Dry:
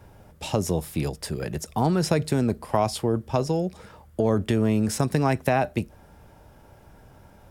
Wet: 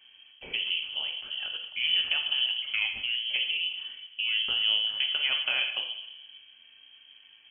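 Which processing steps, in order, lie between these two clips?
rectangular room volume 380 cubic metres, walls mixed, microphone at 0.85 metres
voice inversion scrambler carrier 3,200 Hz
level −8.5 dB

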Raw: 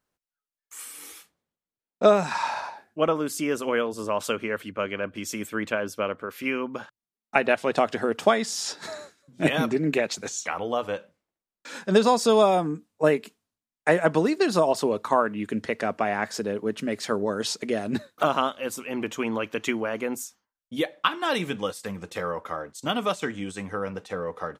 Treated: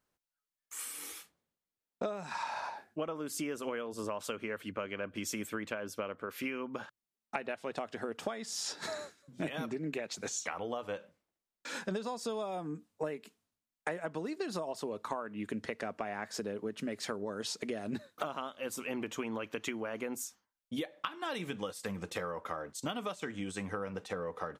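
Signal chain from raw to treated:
downward compressor 12 to 1, threshold −32 dBFS, peak gain reduction 20.5 dB
level −1.5 dB

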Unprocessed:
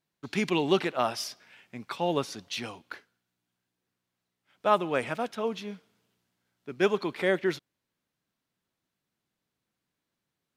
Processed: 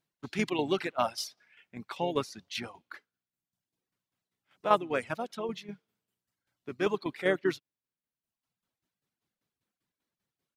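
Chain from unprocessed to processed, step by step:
pitch-shifted copies added −4 semitones −12 dB
shaped tremolo saw down 5.1 Hz, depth 55%
reverb reduction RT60 1 s

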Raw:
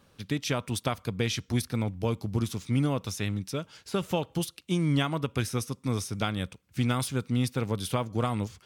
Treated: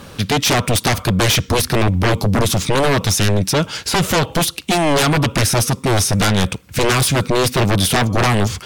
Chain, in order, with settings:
sine wavefolder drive 17 dB, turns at −12 dBFS
brickwall limiter −14.5 dBFS, peak gain reduction 4.5 dB
level +3.5 dB

